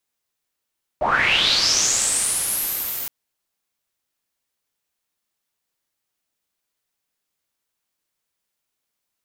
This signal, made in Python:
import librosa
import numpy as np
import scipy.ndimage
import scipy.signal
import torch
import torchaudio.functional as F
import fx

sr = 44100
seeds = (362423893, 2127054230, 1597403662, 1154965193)

y = fx.riser_noise(sr, seeds[0], length_s=2.07, colour='white', kind='lowpass', start_hz=520.0, end_hz=15000.0, q=6.5, swell_db=-17.5, law='linear')